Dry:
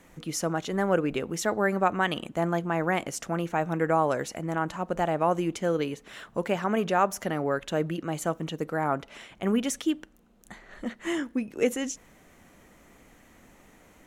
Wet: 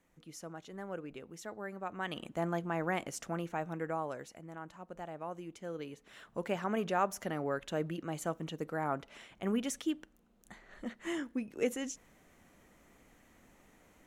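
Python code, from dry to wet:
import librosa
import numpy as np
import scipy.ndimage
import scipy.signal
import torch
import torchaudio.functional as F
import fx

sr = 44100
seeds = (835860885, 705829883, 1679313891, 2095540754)

y = fx.gain(x, sr, db=fx.line((1.82, -17.5), (2.25, -7.5), (3.3, -7.5), (4.52, -17.5), (5.48, -17.5), (6.51, -7.5)))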